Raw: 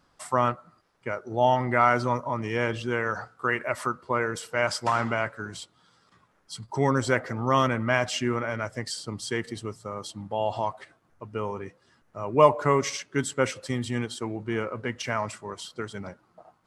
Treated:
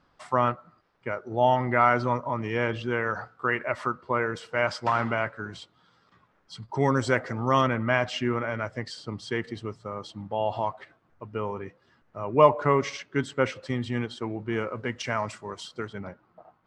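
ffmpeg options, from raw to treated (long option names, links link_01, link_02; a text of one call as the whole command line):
ffmpeg -i in.wav -af "asetnsamples=nb_out_samples=441:pad=0,asendcmd='6.8 lowpass f 6900;7.61 lowpass f 3800;14.53 lowpass f 6800;15.87 lowpass f 2900',lowpass=4000" out.wav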